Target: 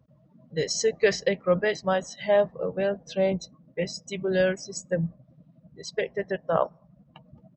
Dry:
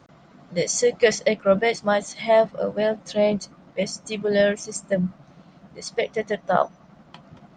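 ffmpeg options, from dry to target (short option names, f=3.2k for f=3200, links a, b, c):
-af "equalizer=f=61:t=o:w=0.3:g=9.5,afftdn=nr=21:nf=-43,asetrate=40440,aresample=44100,atempo=1.09051,volume=-4dB"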